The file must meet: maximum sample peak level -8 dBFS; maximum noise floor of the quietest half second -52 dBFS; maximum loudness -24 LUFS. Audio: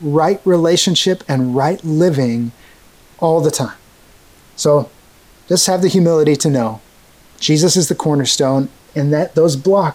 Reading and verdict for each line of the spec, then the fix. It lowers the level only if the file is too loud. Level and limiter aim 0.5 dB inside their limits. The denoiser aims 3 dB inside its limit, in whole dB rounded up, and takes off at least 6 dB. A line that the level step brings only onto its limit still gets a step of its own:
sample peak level -3.0 dBFS: fail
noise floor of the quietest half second -46 dBFS: fail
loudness -14.5 LUFS: fail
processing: trim -10 dB

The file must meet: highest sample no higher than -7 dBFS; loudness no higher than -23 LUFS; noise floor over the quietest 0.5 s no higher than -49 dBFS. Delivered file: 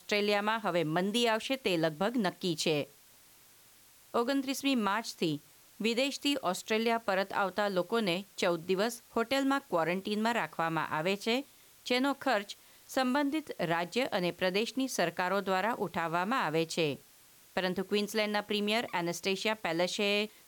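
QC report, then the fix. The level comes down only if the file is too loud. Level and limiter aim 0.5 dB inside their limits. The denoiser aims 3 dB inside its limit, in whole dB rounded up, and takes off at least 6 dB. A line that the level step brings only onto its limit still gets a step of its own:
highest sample -17.5 dBFS: pass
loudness -31.5 LUFS: pass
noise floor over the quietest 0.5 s -60 dBFS: pass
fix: none needed

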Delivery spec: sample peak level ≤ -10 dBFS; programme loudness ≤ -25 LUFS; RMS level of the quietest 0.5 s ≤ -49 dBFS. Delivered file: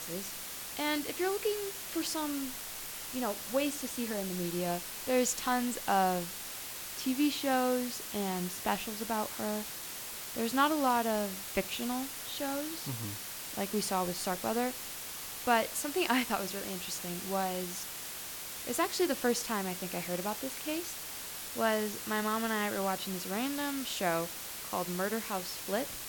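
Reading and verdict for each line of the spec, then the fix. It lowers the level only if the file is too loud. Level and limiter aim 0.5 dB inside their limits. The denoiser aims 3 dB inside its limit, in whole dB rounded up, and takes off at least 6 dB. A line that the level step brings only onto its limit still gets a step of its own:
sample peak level -13.5 dBFS: pass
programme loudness -33.5 LUFS: pass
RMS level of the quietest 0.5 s -42 dBFS: fail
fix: noise reduction 10 dB, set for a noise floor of -42 dBFS

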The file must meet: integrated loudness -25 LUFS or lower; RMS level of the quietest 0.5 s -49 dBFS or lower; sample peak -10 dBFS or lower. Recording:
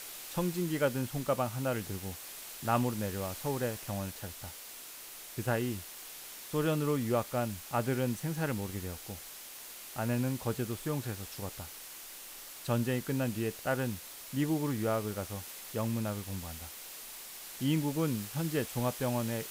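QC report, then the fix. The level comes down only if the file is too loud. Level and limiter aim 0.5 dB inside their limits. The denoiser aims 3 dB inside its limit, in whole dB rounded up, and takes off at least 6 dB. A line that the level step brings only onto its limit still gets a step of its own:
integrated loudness -35.0 LUFS: pass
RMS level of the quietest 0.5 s -47 dBFS: fail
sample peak -16.5 dBFS: pass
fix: noise reduction 6 dB, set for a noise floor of -47 dBFS

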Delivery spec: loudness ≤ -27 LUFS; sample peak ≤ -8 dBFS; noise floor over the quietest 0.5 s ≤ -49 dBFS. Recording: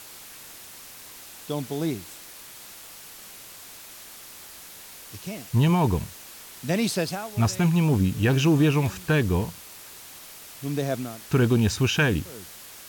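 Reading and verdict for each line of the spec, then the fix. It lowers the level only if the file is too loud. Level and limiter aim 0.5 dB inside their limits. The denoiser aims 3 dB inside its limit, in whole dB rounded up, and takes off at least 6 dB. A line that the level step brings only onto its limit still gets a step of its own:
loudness -24.0 LUFS: fail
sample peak -9.5 dBFS: pass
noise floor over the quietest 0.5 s -44 dBFS: fail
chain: noise reduction 6 dB, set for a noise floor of -44 dBFS; trim -3.5 dB

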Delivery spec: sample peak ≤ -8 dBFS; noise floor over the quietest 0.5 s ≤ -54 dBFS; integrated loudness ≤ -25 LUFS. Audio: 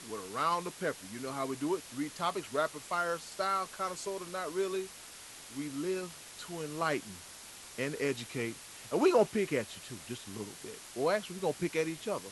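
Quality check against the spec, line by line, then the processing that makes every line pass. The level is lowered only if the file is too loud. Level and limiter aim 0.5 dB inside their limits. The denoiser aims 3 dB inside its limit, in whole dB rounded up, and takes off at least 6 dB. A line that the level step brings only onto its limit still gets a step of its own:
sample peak -14.5 dBFS: pass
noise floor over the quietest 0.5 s -50 dBFS: fail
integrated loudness -34.5 LUFS: pass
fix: noise reduction 7 dB, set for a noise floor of -50 dBFS

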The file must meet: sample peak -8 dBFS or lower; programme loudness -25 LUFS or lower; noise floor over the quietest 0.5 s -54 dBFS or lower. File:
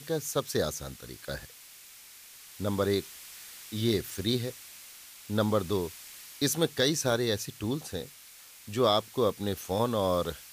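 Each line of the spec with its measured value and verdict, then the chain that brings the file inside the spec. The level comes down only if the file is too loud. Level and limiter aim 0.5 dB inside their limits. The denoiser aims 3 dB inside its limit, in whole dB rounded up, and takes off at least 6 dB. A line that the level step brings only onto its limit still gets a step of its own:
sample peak -12.5 dBFS: pass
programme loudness -30.0 LUFS: pass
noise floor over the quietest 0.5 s -52 dBFS: fail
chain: noise reduction 6 dB, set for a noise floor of -52 dBFS

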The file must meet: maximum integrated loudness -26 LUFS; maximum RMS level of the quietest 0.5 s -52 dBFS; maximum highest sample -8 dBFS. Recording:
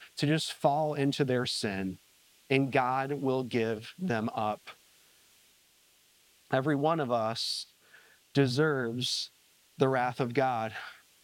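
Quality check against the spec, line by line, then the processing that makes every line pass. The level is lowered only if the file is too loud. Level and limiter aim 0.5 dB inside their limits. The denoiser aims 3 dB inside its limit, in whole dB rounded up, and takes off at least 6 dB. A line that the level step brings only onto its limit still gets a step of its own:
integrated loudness -30.5 LUFS: pass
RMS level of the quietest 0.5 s -65 dBFS: pass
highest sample -10.5 dBFS: pass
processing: none needed

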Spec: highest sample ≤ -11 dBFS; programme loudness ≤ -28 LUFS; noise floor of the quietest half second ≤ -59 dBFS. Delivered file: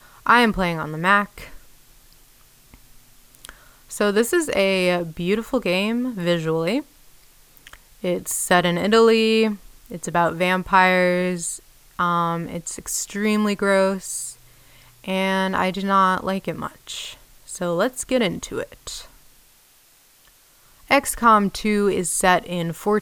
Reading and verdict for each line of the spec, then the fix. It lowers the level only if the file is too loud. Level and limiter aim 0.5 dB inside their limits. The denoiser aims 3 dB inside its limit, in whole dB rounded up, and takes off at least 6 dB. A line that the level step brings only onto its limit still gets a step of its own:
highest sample -3.0 dBFS: fail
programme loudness -20.5 LUFS: fail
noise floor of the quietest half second -55 dBFS: fail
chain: trim -8 dB; peak limiter -11.5 dBFS

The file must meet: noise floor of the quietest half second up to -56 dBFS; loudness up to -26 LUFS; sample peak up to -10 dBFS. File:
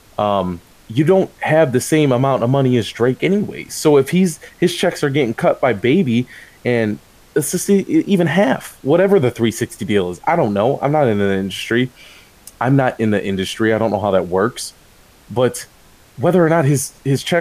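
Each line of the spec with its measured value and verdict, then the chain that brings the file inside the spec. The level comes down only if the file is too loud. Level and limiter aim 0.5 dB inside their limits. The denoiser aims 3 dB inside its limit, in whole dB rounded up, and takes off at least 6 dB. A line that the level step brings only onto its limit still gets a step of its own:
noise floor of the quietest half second -47 dBFS: fail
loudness -16.5 LUFS: fail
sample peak -3.5 dBFS: fail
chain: trim -10 dB

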